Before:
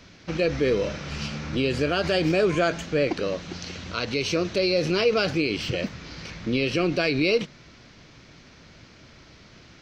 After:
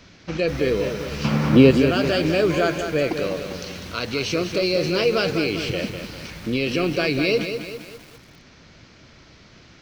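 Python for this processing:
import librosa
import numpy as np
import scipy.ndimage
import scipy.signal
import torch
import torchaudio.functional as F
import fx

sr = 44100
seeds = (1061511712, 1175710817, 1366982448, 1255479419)

y = fx.graphic_eq_10(x, sr, hz=(125, 250, 500, 1000, 2000), db=(10, 10, 7, 12, 4), at=(1.24, 1.71))
y = fx.echo_crushed(y, sr, ms=199, feedback_pct=55, bits=7, wet_db=-7.5)
y = y * librosa.db_to_amplitude(1.0)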